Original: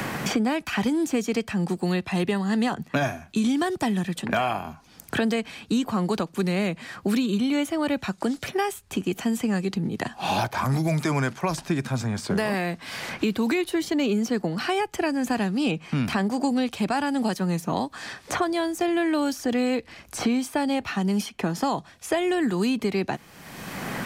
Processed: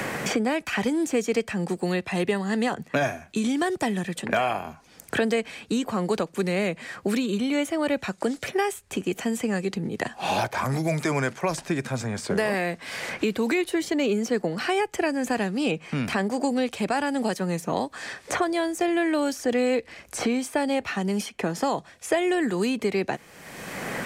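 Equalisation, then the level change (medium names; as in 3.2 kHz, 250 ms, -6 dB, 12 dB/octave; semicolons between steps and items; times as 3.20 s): ten-band graphic EQ 500 Hz +8 dB, 2 kHz +6 dB, 8 kHz +6 dB; -4.0 dB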